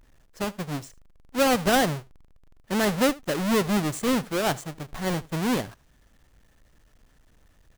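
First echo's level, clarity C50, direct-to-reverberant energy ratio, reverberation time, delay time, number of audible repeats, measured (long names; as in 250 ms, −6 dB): −22.0 dB, no reverb audible, no reverb audible, no reverb audible, 78 ms, 1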